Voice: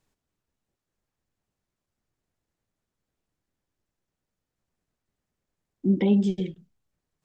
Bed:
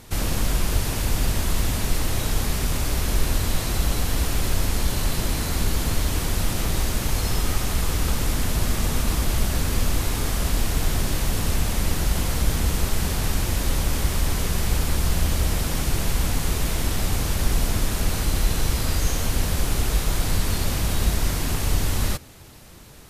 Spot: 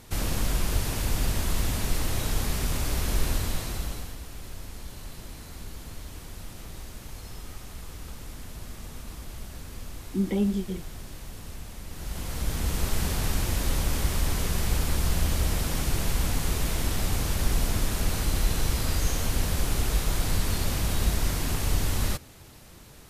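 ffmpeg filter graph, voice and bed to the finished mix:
-filter_complex "[0:a]adelay=4300,volume=0.596[s0];[1:a]volume=3.16,afade=t=out:st=3.28:d=0.9:silence=0.211349,afade=t=in:st=11.89:d=1.07:silence=0.199526[s1];[s0][s1]amix=inputs=2:normalize=0"

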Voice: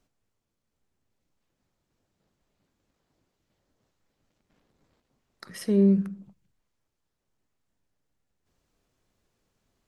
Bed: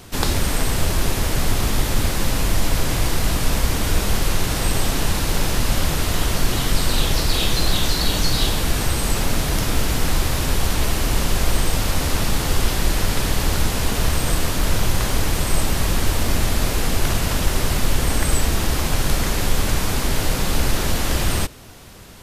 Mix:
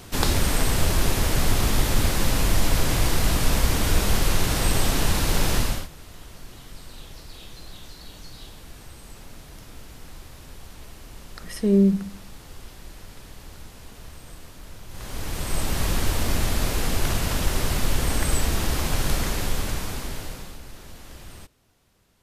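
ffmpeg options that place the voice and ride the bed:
-filter_complex "[0:a]adelay=5950,volume=1.33[s0];[1:a]volume=7.5,afade=t=out:st=5.57:d=0.31:silence=0.0841395,afade=t=in:st=14.88:d=0.96:silence=0.112202,afade=t=out:st=19.13:d=1.46:silence=0.11885[s1];[s0][s1]amix=inputs=2:normalize=0"

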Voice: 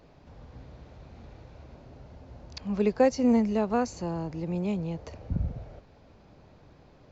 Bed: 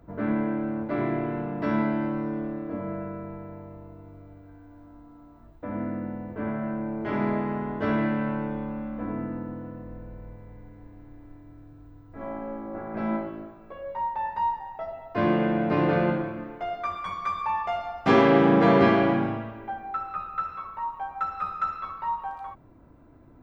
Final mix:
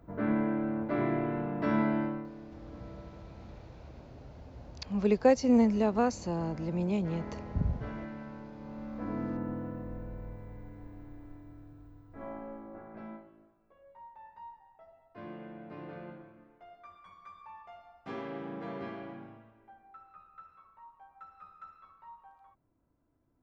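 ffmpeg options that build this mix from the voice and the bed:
-filter_complex "[0:a]adelay=2250,volume=0.891[s0];[1:a]volume=4.47,afade=t=out:st=1.99:d=0.31:silence=0.211349,afade=t=in:st=8.55:d=0.96:silence=0.158489,afade=t=out:st=10.98:d=2.26:silence=0.0841395[s1];[s0][s1]amix=inputs=2:normalize=0"

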